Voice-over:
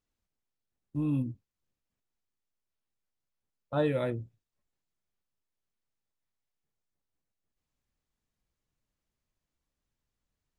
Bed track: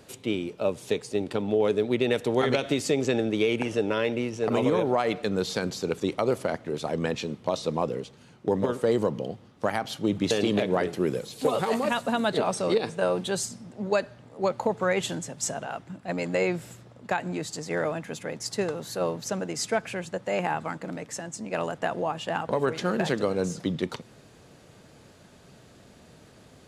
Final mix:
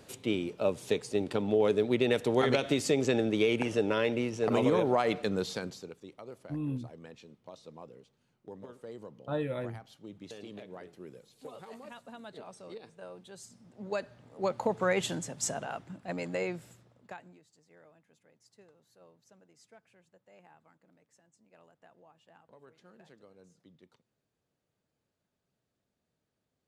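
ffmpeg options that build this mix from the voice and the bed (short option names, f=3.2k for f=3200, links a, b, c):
-filter_complex "[0:a]adelay=5550,volume=-5dB[a];[1:a]volume=16dB,afade=t=out:st=5.19:d=0.76:silence=0.112202,afade=t=in:st=13.36:d=1.46:silence=0.11885,afade=t=out:st=15.55:d=1.86:silence=0.0375837[b];[a][b]amix=inputs=2:normalize=0"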